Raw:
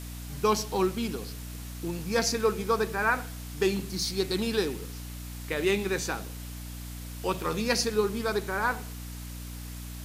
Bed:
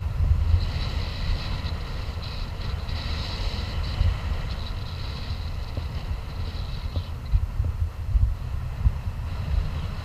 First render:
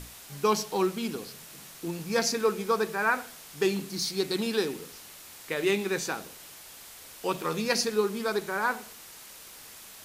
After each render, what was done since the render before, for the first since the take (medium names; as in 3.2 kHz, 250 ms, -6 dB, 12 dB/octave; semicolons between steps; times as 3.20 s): hum notches 60/120/180/240/300 Hz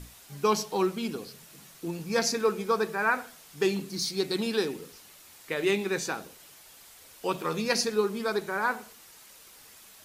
noise reduction 6 dB, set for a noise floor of -48 dBFS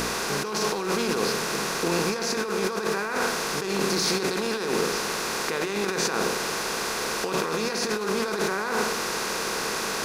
spectral levelling over time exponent 0.4; compressor with a negative ratio -26 dBFS, ratio -1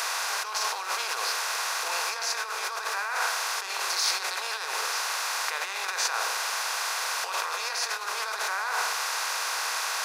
inverse Chebyshev high-pass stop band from 270 Hz, stop band 50 dB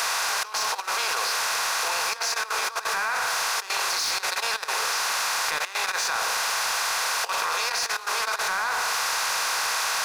waveshaping leveller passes 2; level held to a coarse grid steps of 13 dB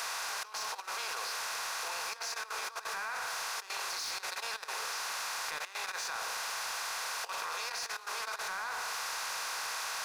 trim -11.5 dB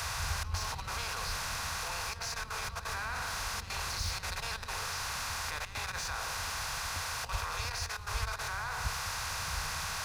add bed -16 dB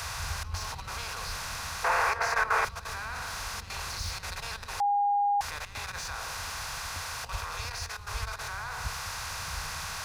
1.84–2.65 s: high-order bell 910 Hz +14.5 dB 2.9 oct; 4.80–5.41 s: bleep 813 Hz -22.5 dBFS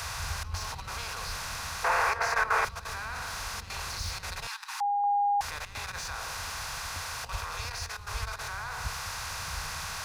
4.47–5.04 s: steep high-pass 800 Hz 96 dB/octave